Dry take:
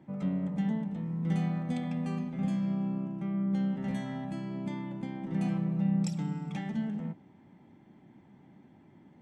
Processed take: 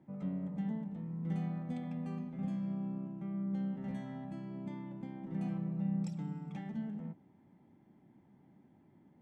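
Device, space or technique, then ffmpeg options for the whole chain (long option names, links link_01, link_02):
behind a face mask: -af "highshelf=frequency=2000:gain=-8,volume=-6.5dB"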